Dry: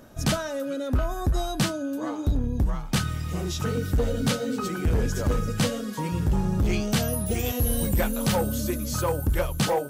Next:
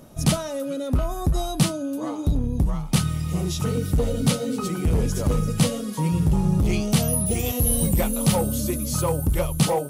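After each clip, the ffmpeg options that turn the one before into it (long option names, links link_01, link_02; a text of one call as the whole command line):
ffmpeg -i in.wav -af "equalizer=frequency=160:width_type=o:width=0.33:gain=8,equalizer=frequency=1600:width_type=o:width=0.33:gain=-10,equalizer=frequency=10000:width_type=o:width=0.33:gain=9,volume=1.5dB" out.wav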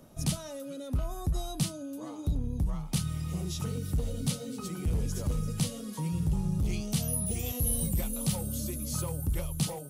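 ffmpeg -i in.wav -filter_complex "[0:a]acrossover=split=180|3000[link_01][link_02][link_03];[link_02]acompressor=threshold=-31dB:ratio=6[link_04];[link_01][link_04][link_03]amix=inputs=3:normalize=0,volume=-7.5dB" out.wav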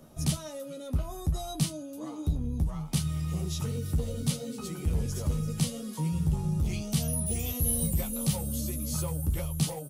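ffmpeg -i in.wav -filter_complex "[0:a]asplit=2[link_01][link_02];[link_02]adelay=13,volume=-6dB[link_03];[link_01][link_03]amix=inputs=2:normalize=0" out.wav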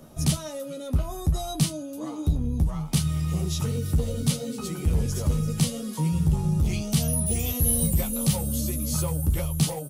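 ffmpeg -i in.wav -af "aeval=exprs='0.224*(cos(1*acos(clip(val(0)/0.224,-1,1)))-cos(1*PI/2))+0.0178*(cos(5*acos(clip(val(0)/0.224,-1,1)))-cos(5*PI/2))+0.00891*(cos(7*acos(clip(val(0)/0.224,-1,1)))-cos(7*PI/2))':channel_layout=same,volume=4dB" out.wav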